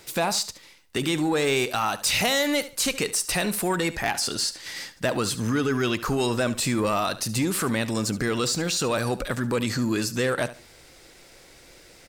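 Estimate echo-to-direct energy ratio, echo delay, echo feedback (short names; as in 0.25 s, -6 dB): -15.0 dB, 72 ms, 25%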